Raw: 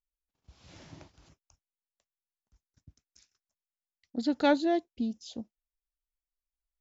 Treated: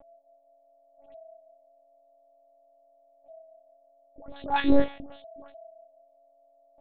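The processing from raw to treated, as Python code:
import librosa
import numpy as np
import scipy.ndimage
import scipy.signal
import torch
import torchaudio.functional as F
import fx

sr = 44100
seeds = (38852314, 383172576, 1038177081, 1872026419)

y = fx.tilt_eq(x, sr, slope=3.0, at=(0.94, 4.62))
y = fx.comb_fb(y, sr, f0_hz=170.0, decay_s=0.24, harmonics='all', damping=0.0, mix_pct=90)
y = fx.small_body(y, sr, hz=(360.0, 1400.0), ring_ms=60, db=8)
y = np.sign(y) * np.maximum(np.abs(y) - 10.0 ** (-47.5 / 20.0), 0.0)
y = fx.dynamic_eq(y, sr, hz=2400.0, q=0.8, threshold_db=-47.0, ratio=4.0, max_db=5)
y = fx.dispersion(y, sr, late='highs', ms=131.0, hz=1100.0)
y = y + 10.0 ** (-52.0 / 20.0) * np.sin(2.0 * np.pi * 660.0 * np.arange(len(y)) / sr)
y = fx.lpc_monotone(y, sr, seeds[0], pitch_hz=280.0, order=8)
y = y * 10.0 ** (8.0 / 20.0)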